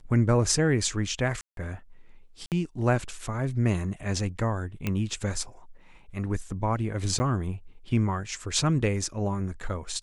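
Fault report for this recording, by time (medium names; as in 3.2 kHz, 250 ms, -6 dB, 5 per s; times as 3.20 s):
1.41–1.57 s: dropout 162 ms
2.46–2.52 s: dropout 58 ms
4.87 s: pop -14 dBFS
7.19–7.20 s: dropout 10 ms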